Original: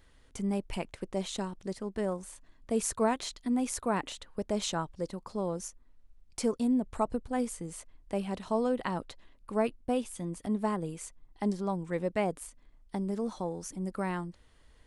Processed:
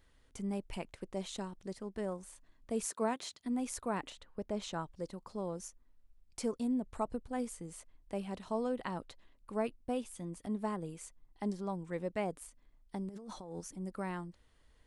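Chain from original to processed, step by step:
0:02.86–0:03.44: high-pass filter 240 Hz → 74 Hz 24 dB per octave
0:04.10–0:04.74: high-shelf EQ 4,500 Hz −9.5 dB
0:13.09–0:13.61: compressor whose output falls as the input rises −40 dBFS, ratio −1
level −6 dB

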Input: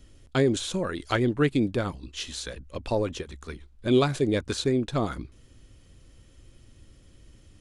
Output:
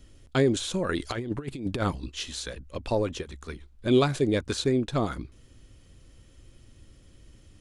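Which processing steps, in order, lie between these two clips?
0:00.89–0:02.10: compressor whose output falls as the input rises −28 dBFS, ratio −0.5

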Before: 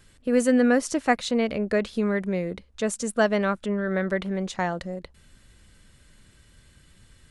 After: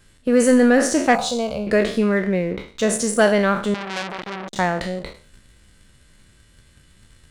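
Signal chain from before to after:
peak hold with a decay on every bin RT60 0.51 s
0:02.18–0:02.68: low-pass filter 3,600 Hz
leveller curve on the samples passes 1
0:01.15–0:01.67: phaser with its sweep stopped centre 780 Hz, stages 4
0:03.74–0:04.56: saturating transformer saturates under 3,400 Hz
level +2 dB

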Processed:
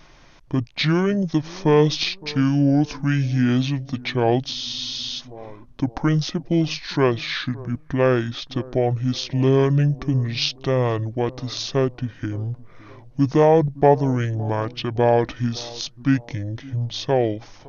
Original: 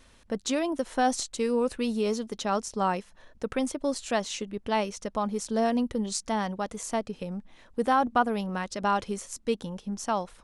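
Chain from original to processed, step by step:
change of speed 0.59×
bucket-brigade delay 564 ms, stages 4,096, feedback 38%, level −21 dB
frozen spectrum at 0:04.56, 0.63 s
level +8 dB

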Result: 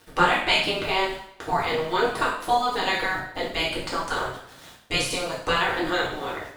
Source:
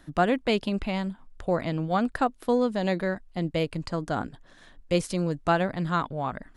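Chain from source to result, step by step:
gate on every frequency bin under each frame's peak −10 dB weak
centre clipping without the shift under −53 dBFS
coupled-rooms reverb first 0.64 s, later 1.7 s, from −27 dB, DRR −6 dB
level +5 dB

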